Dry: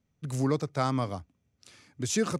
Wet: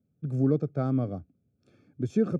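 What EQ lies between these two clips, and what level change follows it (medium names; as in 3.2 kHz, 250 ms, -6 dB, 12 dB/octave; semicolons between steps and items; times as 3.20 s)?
boxcar filter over 45 samples; high-pass 110 Hz; +5.0 dB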